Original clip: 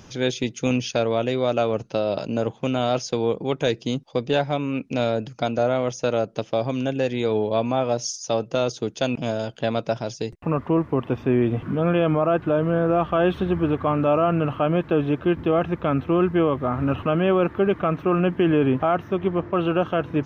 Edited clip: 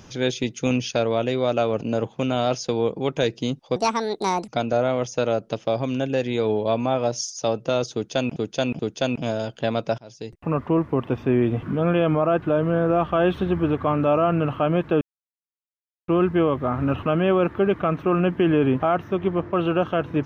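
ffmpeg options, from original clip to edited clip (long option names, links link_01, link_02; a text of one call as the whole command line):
ffmpeg -i in.wav -filter_complex "[0:a]asplit=9[link_01][link_02][link_03][link_04][link_05][link_06][link_07][link_08][link_09];[link_01]atrim=end=1.812[link_10];[link_02]atrim=start=2.248:end=4.204[link_11];[link_03]atrim=start=4.2:end=5.34,asetpts=PTS-STARTPTS,asetrate=69678,aresample=44100[link_12];[link_04]atrim=start=5.336:end=9.222[link_13];[link_05]atrim=start=8.788:end=9.222[link_14];[link_06]atrim=start=8.788:end=9.98,asetpts=PTS-STARTPTS,afade=type=out:start_time=1.188:duration=0.004:curve=hsin:silence=0.0630957[link_15];[link_07]atrim=start=9.98:end=15.01,asetpts=PTS-STARTPTS,afade=type=in:duration=0.57:silence=0.0630957,afade=type=out:start_time=5.026:duration=0.004:curve=hsin[link_16];[link_08]atrim=start=15.01:end=16.08,asetpts=PTS-STARTPTS,volume=0[link_17];[link_09]atrim=start=16.08,asetpts=PTS-STARTPTS,afade=type=in:duration=0.004:curve=hsin[link_18];[link_10][link_11]acrossfade=duration=0.004:curve1=hsin:curve2=hsin[link_19];[link_19][link_12]acrossfade=duration=0.004:curve1=hsin:curve2=hsin[link_20];[link_20][link_13]acrossfade=duration=0.004:curve1=hsin:curve2=hsin[link_21];[link_21][link_14]acrossfade=duration=0.004:curve1=hsin:curve2=hsin[link_22];[link_15][link_16][link_17][link_18]concat=n=4:v=0:a=1[link_23];[link_22][link_23]acrossfade=duration=0.004:curve1=hsin:curve2=hsin" out.wav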